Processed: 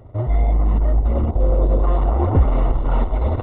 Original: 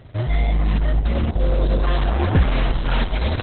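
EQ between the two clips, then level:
Savitzky-Golay smoothing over 65 samples
parametric band 170 Hz −9.5 dB 0.55 octaves
+2.5 dB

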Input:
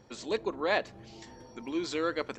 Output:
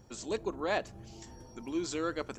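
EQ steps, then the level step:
octave-band graphic EQ 125/250/500/1,000/2,000/4,000 Hz −4/−7/−9/−7/−11/−11 dB
+8.0 dB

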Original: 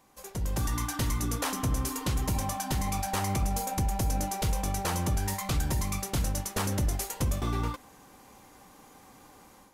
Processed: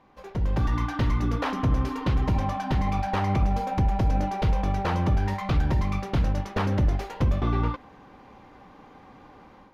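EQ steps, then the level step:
high-frequency loss of the air 310 metres
+6.0 dB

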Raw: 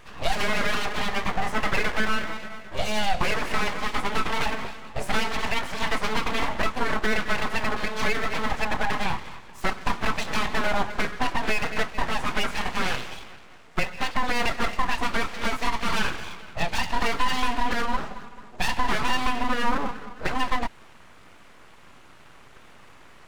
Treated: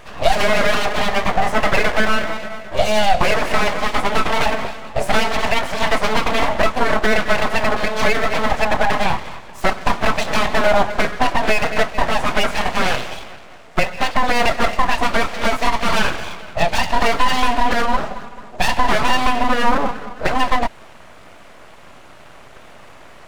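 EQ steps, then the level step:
parametric band 630 Hz +7.5 dB 0.56 octaves
+7.0 dB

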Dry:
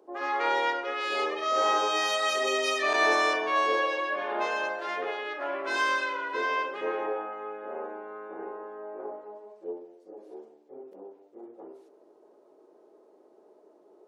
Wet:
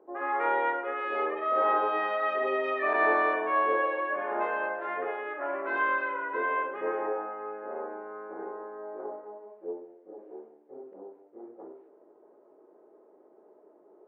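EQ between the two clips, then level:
low-pass filter 2,000 Hz 24 dB per octave
0.0 dB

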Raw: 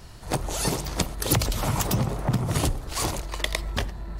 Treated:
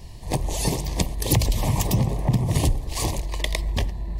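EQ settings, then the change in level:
Butterworth band-reject 1,400 Hz, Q 2.1
low-shelf EQ 160 Hz +6.5 dB
0.0 dB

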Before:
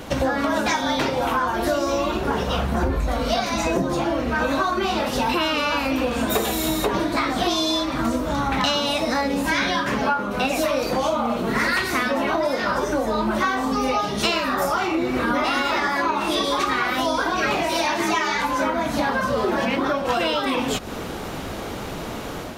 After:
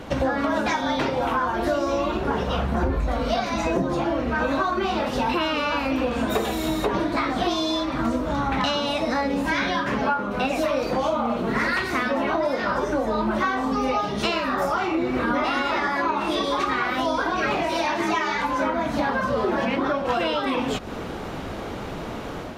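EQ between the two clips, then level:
low-pass filter 3,000 Hz 6 dB per octave
−1.0 dB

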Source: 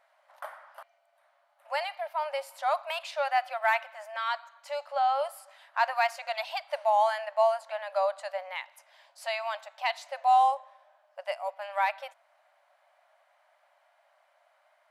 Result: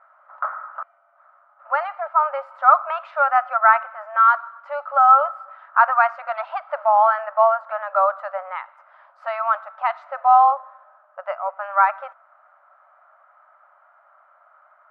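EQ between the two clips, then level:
low-pass with resonance 1,300 Hz, resonance Q 11
+3.5 dB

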